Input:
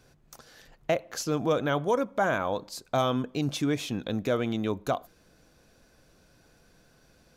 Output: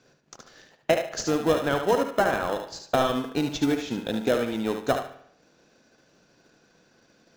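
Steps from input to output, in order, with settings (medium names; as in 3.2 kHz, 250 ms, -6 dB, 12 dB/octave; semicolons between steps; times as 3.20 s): high-pass 200 Hz 12 dB/octave; transient shaper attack +5 dB, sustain -5 dB; steep low-pass 7.3 kHz 72 dB/octave; in parallel at -8.5 dB: sample-and-hold 38×; on the sum: thinning echo 73 ms, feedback 26%, high-pass 420 Hz, level -6 dB; on a send at -11.5 dB: reverberation RT60 0.75 s, pre-delay 50 ms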